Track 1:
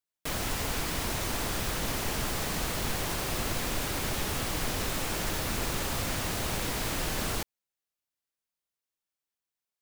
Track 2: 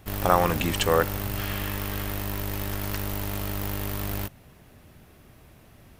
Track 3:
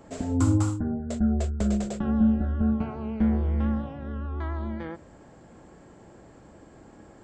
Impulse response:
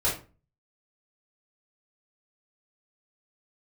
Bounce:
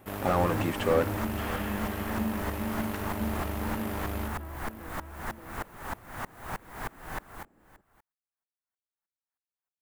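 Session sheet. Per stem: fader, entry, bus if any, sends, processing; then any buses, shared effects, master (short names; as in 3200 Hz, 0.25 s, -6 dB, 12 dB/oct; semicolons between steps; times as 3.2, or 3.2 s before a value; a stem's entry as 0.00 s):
-1.5 dB, 0.00 s, no send, echo send -21 dB, band shelf 1200 Hz +8.5 dB; dB-ramp tremolo swelling 3.2 Hz, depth 29 dB
+1.0 dB, 0.00 s, no send, echo send -20 dB, HPF 270 Hz 6 dB/oct
-11.5 dB, 0.00 s, no send, echo send -3.5 dB, dry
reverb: off
echo: echo 0.576 s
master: bell 5000 Hz -11.5 dB 1.7 oct; slew limiter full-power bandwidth 71 Hz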